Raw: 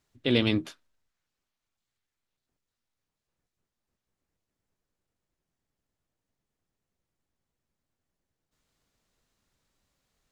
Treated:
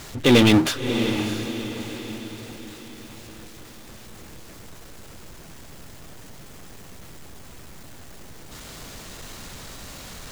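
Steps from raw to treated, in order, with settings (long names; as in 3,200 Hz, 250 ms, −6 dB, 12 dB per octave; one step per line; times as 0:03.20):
power curve on the samples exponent 0.5
feedback delay with all-pass diffusion 652 ms, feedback 46%, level −8 dB
level +3.5 dB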